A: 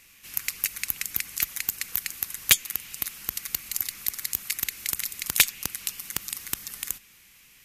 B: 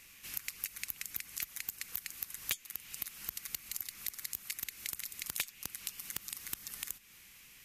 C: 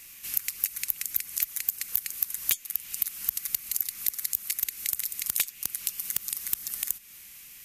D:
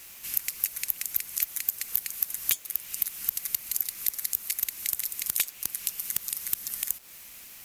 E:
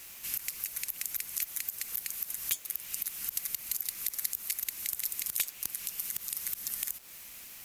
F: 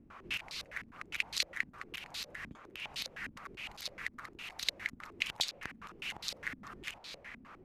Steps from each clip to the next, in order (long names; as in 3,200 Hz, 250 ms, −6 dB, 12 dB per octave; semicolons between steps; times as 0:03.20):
downward compressor 3 to 1, threshold −36 dBFS, peak gain reduction 17.5 dB; level −2 dB
high-shelf EQ 6,400 Hz +11.5 dB; level +2.5 dB
bit reduction 8 bits
brickwall limiter −12 dBFS, peak gain reduction 10.5 dB; level −1 dB
low-pass on a step sequencer 9.8 Hz 250–4,100 Hz; level +4 dB